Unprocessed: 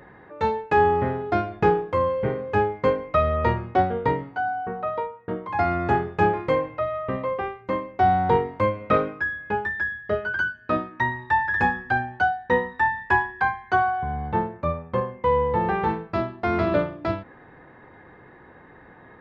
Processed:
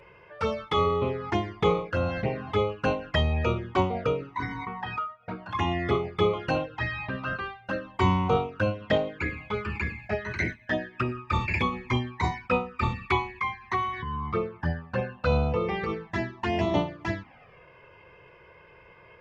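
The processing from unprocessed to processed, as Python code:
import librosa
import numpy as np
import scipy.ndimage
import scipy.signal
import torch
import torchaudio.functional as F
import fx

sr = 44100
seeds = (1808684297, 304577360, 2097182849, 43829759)

y = fx.formant_shift(x, sr, semitones=5)
y = fx.env_flanger(y, sr, rest_ms=2.1, full_db=-18.5)
y = F.gain(torch.from_numpy(y), -1.5).numpy()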